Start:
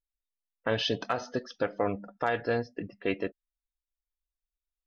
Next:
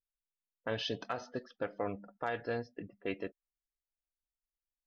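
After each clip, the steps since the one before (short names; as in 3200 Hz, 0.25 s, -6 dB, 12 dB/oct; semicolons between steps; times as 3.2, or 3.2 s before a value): low-pass opened by the level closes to 510 Hz, open at -26.5 dBFS; gain -7.5 dB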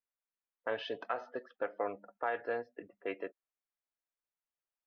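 three-band isolator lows -21 dB, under 340 Hz, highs -22 dB, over 2600 Hz; gain +2.5 dB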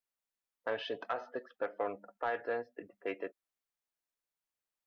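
soft clip -23.5 dBFS, distortion -22 dB; gain +1 dB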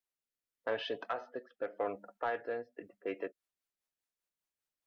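rotary speaker horn 0.85 Hz, later 5 Hz, at 2.51; gain +1.5 dB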